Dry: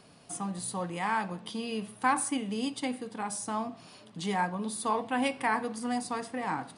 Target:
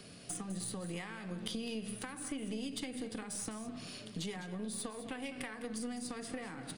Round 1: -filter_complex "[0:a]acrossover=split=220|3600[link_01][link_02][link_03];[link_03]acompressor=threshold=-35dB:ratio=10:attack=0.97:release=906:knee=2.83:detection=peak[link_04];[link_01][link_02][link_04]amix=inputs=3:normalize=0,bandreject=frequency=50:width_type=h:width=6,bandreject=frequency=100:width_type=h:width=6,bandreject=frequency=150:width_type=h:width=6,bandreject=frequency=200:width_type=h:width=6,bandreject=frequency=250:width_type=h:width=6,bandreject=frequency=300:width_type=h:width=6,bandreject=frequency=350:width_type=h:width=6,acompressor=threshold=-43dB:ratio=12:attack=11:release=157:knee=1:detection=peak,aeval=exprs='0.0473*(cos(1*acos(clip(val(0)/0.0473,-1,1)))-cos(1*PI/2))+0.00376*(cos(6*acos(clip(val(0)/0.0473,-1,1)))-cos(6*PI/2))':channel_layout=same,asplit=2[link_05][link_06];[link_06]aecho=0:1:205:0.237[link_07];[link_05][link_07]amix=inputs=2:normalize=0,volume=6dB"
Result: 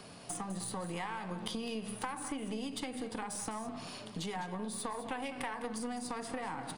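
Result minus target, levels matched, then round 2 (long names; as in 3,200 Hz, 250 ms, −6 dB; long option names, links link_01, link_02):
1,000 Hz band +8.0 dB
-filter_complex "[0:a]acrossover=split=220|3600[link_01][link_02][link_03];[link_03]acompressor=threshold=-35dB:ratio=10:attack=0.97:release=906:knee=2.83:detection=peak[link_04];[link_01][link_02][link_04]amix=inputs=3:normalize=0,bandreject=frequency=50:width_type=h:width=6,bandreject=frequency=100:width_type=h:width=6,bandreject=frequency=150:width_type=h:width=6,bandreject=frequency=200:width_type=h:width=6,bandreject=frequency=250:width_type=h:width=6,bandreject=frequency=300:width_type=h:width=6,bandreject=frequency=350:width_type=h:width=6,acompressor=threshold=-43dB:ratio=12:attack=11:release=157:knee=1:detection=peak,equalizer=frequency=910:width=1.8:gain=-14.5,aeval=exprs='0.0473*(cos(1*acos(clip(val(0)/0.0473,-1,1)))-cos(1*PI/2))+0.00376*(cos(6*acos(clip(val(0)/0.0473,-1,1)))-cos(6*PI/2))':channel_layout=same,asplit=2[link_05][link_06];[link_06]aecho=0:1:205:0.237[link_07];[link_05][link_07]amix=inputs=2:normalize=0,volume=6dB"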